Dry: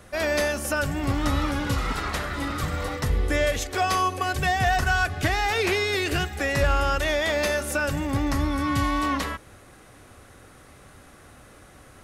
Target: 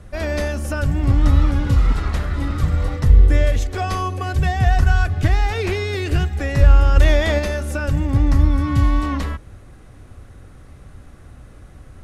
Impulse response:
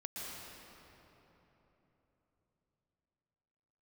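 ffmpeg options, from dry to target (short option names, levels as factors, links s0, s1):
-filter_complex "[0:a]asplit=3[s0][s1][s2];[s0]afade=t=out:st=6.95:d=0.02[s3];[s1]acontrast=31,afade=t=in:st=6.95:d=0.02,afade=t=out:st=7.38:d=0.02[s4];[s2]afade=t=in:st=7.38:d=0.02[s5];[s3][s4][s5]amix=inputs=3:normalize=0,aemphasis=mode=reproduction:type=riaa,crystalizer=i=2.5:c=0,volume=0.75"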